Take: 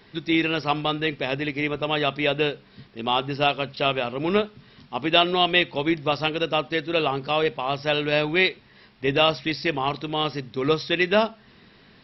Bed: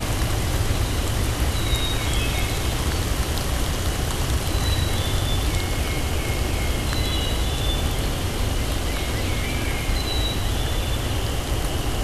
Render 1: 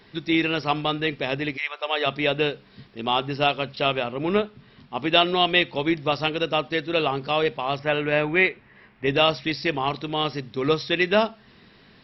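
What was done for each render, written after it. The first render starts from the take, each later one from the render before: 1.56–2.05 s: high-pass 1.2 kHz -> 320 Hz 24 dB/octave; 4.03–4.97 s: distance through air 140 m; 7.79–9.06 s: resonant high shelf 3.1 kHz -11.5 dB, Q 1.5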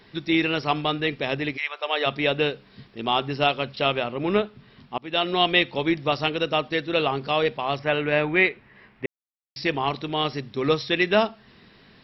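4.98–5.41 s: fade in, from -22 dB; 9.06–9.56 s: mute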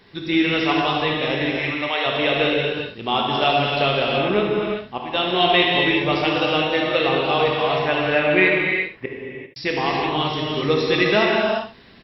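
on a send: delay 71 ms -10.5 dB; on the sum: gated-style reverb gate 420 ms flat, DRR -2.5 dB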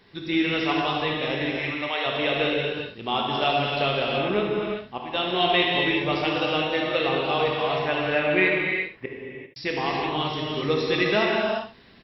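trim -4.5 dB

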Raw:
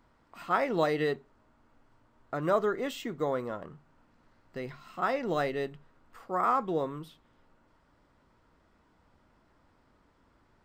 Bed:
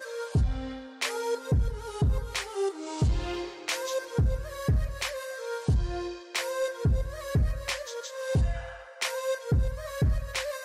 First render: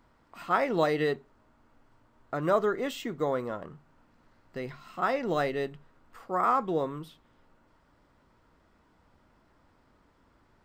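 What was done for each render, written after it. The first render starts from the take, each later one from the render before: trim +1.5 dB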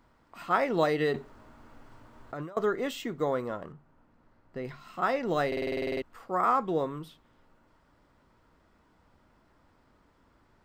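1.14–2.57 s: compressor with a negative ratio -39 dBFS; 3.72–4.65 s: treble shelf 2.3 kHz -10.5 dB; 5.47 s: stutter in place 0.05 s, 11 plays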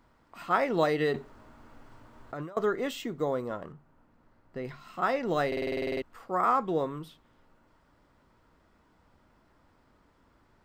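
3.02–3.51 s: dynamic bell 1.8 kHz, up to -6 dB, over -47 dBFS, Q 0.87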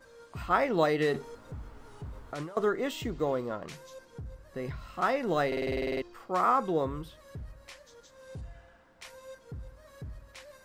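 add bed -17.5 dB

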